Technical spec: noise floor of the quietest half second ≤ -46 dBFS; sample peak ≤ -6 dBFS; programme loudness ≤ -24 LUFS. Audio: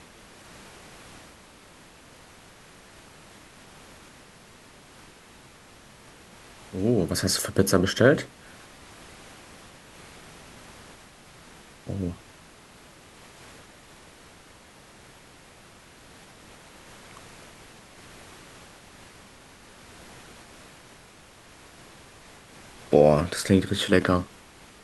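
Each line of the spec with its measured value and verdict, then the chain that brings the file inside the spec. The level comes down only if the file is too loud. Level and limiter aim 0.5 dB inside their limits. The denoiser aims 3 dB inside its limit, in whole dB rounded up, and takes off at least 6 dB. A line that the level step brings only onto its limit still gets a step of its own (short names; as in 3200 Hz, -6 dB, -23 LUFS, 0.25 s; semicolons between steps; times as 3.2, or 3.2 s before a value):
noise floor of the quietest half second -51 dBFS: OK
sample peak -4.0 dBFS: fail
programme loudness -23.0 LUFS: fail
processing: gain -1.5 dB; limiter -6.5 dBFS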